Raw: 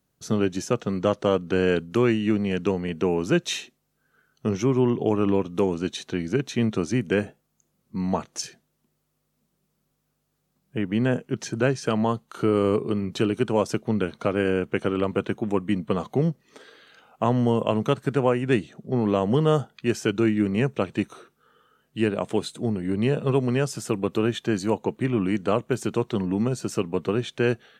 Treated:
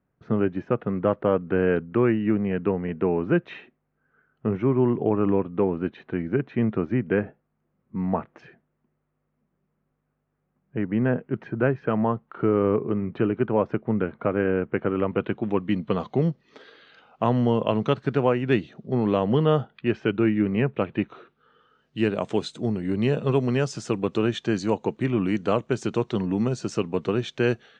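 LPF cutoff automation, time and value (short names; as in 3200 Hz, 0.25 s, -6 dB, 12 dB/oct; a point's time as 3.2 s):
LPF 24 dB/oct
14.87 s 2100 Hz
15.71 s 4800 Hz
19.07 s 4800 Hz
20.03 s 2900 Hz
20.99 s 2900 Hz
22.14 s 6800 Hz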